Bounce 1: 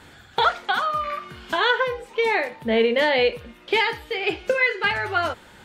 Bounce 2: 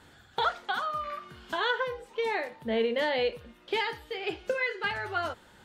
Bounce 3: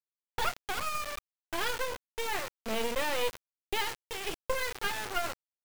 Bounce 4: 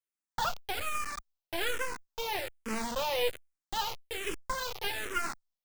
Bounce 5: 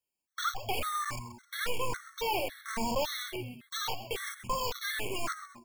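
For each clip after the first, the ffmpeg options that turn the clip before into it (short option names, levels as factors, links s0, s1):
-af "equalizer=f=2300:t=o:w=0.39:g=-4.5,volume=0.398"
-af "aecho=1:1:5.7:0.33,acrusher=bits=3:dc=4:mix=0:aa=0.000001"
-filter_complex "[0:a]asplit=2[s0][s1];[s1]afreqshift=-1.2[s2];[s0][s2]amix=inputs=2:normalize=1,volume=1.33"
-filter_complex "[0:a]asplit=4[s0][s1][s2][s3];[s1]adelay=130,afreqshift=-120,volume=0.168[s4];[s2]adelay=260,afreqshift=-240,volume=0.0653[s5];[s3]adelay=390,afreqshift=-360,volume=0.0254[s6];[s0][s4][s5][s6]amix=inputs=4:normalize=0,asoftclip=type=tanh:threshold=0.0299,afftfilt=real='re*gt(sin(2*PI*1.8*pts/sr)*(1-2*mod(floor(b*sr/1024/1100),2)),0)':imag='im*gt(sin(2*PI*1.8*pts/sr)*(1-2*mod(floor(b*sr/1024/1100),2)),0)':win_size=1024:overlap=0.75,volume=2.24"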